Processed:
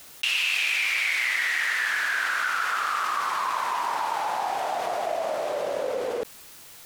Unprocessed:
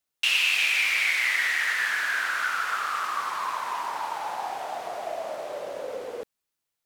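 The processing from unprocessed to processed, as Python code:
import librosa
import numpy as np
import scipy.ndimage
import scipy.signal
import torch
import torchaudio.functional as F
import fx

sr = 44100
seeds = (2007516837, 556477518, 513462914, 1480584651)

y = fx.highpass(x, sr, hz=fx.line((0.86, 240.0), (2.86, 94.0)), slope=24, at=(0.86, 2.86), fade=0.02)
y = fx.env_flatten(y, sr, amount_pct=70)
y = y * 10.0 ** (-3.0 / 20.0)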